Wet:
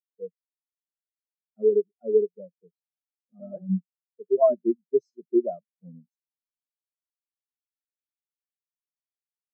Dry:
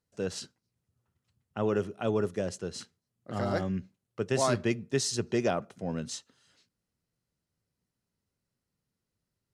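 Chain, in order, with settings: elliptic band-pass 160–8500 Hz; spectral contrast expander 4:1; trim +4.5 dB

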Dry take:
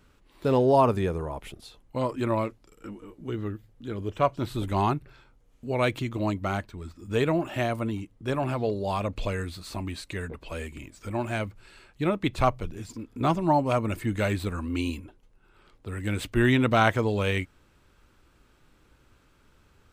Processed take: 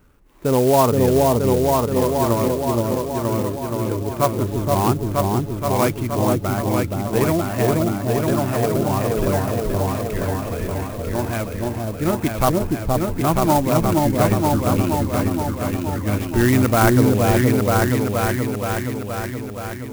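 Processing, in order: distance through air 280 m; on a send: delay with an opening low-pass 473 ms, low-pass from 750 Hz, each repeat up 2 oct, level 0 dB; on the sum: sampling jitter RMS 0.053 ms; trim +5.5 dB

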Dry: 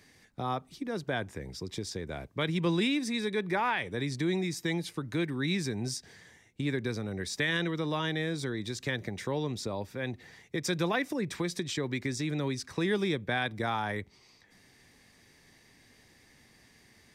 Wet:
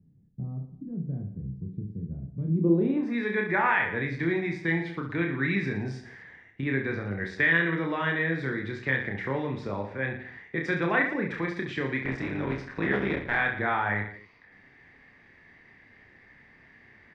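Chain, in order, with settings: 12.04–13.40 s: cycle switcher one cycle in 3, muted; low-pass sweep 170 Hz -> 1.9 kHz, 2.41–3.22 s; reverse bouncing-ball echo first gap 30 ms, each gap 1.25×, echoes 5

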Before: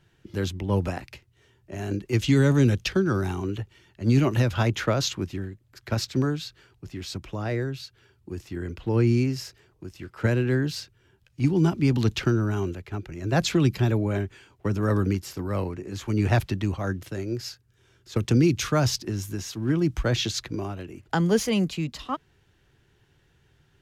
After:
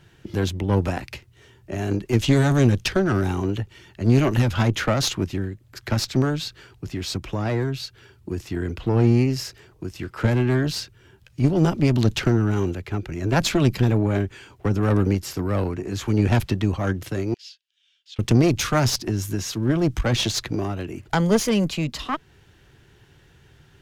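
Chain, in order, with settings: single-diode clipper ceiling -26.5 dBFS; in parallel at -2.5 dB: compression, threshold -38 dBFS, peak gain reduction 20 dB; 17.34–18.19 s: on the sum: ladder band-pass 3.5 kHz, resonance 60%; trim +4.5 dB

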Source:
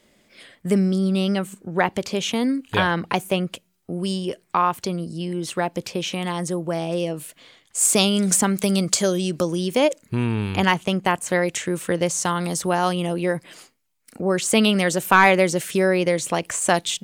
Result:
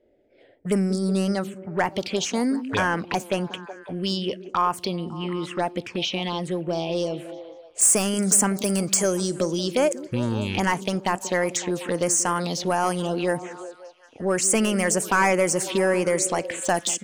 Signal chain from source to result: level-controlled noise filter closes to 610 Hz, open at -18 dBFS; tilt EQ +2 dB/octave; in parallel at -1.5 dB: compression, threshold -30 dBFS, peak gain reduction 19.5 dB; on the sum: saturation -12 dBFS, distortion -11 dB; touch-sensitive phaser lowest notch 180 Hz, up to 3.8 kHz, full sweep at -18.5 dBFS; repeats whose band climbs or falls 185 ms, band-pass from 270 Hz, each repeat 0.7 oct, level -9.5 dB; on a send at -23 dB: reverberation, pre-delay 3 ms

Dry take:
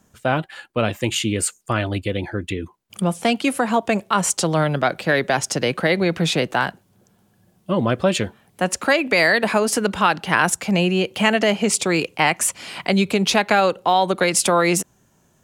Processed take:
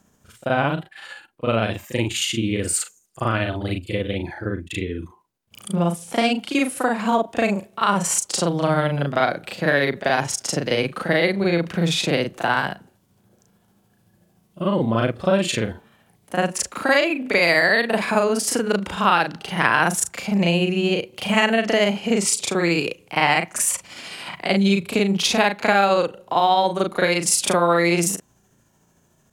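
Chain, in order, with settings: granular stretch 1.9×, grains 149 ms

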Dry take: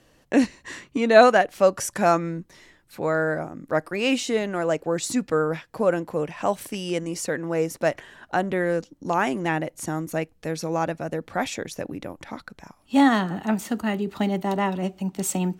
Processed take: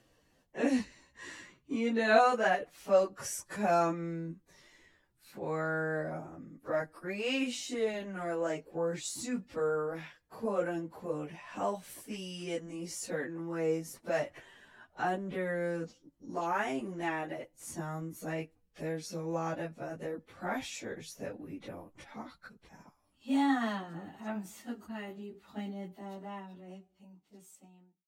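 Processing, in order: fade out at the end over 3.39 s; plain phase-vocoder stretch 1.8×; trim -7.5 dB

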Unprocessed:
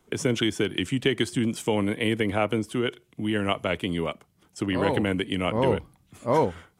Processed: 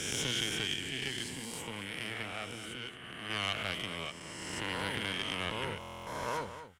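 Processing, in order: reverse spectral sustain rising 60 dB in 2.15 s; 0.74–3.30 s: flange 1 Hz, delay 8.5 ms, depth 9.1 ms, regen -55%; valve stage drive 13 dB, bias 0.75; amplifier tone stack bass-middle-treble 5-5-5; echo from a far wall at 39 m, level -11 dB; buffer glitch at 5.79 s, samples 1024, times 11; trim +3.5 dB

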